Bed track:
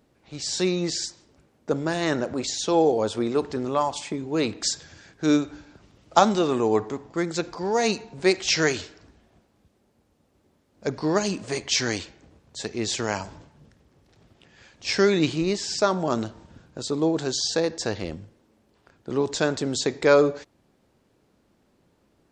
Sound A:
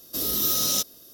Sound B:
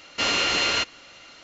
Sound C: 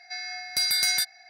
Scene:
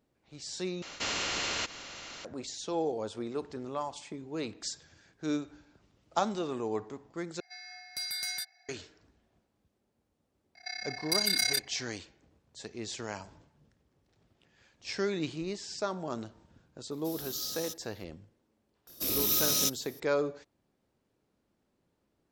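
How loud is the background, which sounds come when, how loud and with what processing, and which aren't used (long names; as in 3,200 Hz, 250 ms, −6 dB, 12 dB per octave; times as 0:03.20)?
bed track −12 dB
0:00.82: overwrite with B −10 dB + every bin compressed towards the loudest bin 2 to 1
0:07.40: overwrite with C −12 dB
0:10.55: mix in C −0.5 dB + amplitude modulation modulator 33 Hz, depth 85%
0:16.91: mix in A −17 dB
0:18.87: mix in A −4 dB + loose part that buzzes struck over −42 dBFS, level −30 dBFS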